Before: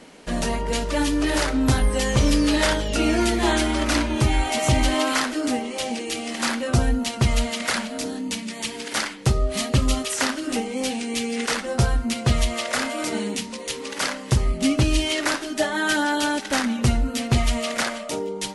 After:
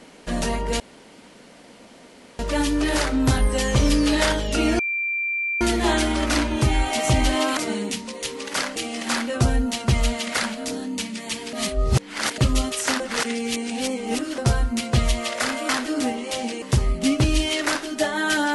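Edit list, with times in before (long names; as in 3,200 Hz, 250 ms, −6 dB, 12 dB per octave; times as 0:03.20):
0:00.80: splice in room tone 1.59 s
0:03.20: insert tone 2,360 Hz −22 dBFS 0.82 s
0:05.16–0:06.09: swap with 0:13.02–0:14.21
0:08.86–0:09.71: reverse
0:10.33–0:11.71: reverse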